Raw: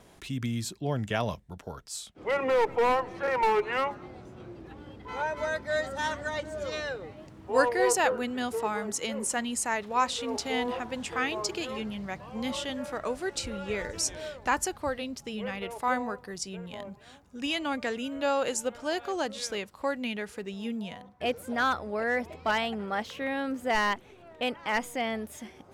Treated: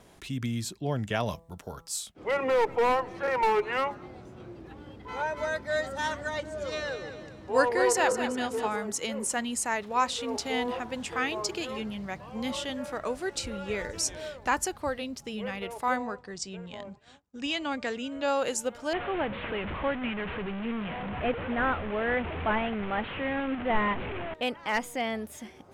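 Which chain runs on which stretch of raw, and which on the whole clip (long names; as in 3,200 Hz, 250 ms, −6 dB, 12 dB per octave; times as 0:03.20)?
0:01.26–0:02.12: high-shelf EQ 7,000 Hz +9 dB + hum removal 165.6 Hz, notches 8
0:06.47–0:08.76: low-pass filter 11,000 Hz + repeating echo 199 ms, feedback 41%, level −9 dB
0:15.96–0:18.28: elliptic low-pass filter 8,400 Hz + downward expander −50 dBFS
0:18.93–0:24.34: linear delta modulator 16 kbit/s, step −30 dBFS + low-shelf EQ 120 Hz +7 dB
whole clip: no processing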